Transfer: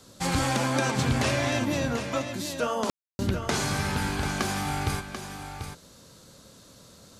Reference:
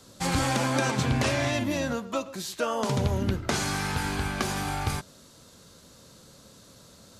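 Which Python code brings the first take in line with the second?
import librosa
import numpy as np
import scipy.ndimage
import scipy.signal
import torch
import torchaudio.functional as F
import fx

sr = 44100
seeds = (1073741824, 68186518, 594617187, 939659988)

y = fx.fix_ambience(x, sr, seeds[0], print_start_s=5.77, print_end_s=6.27, start_s=2.9, end_s=3.19)
y = fx.fix_echo_inverse(y, sr, delay_ms=739, level_db=-8.5)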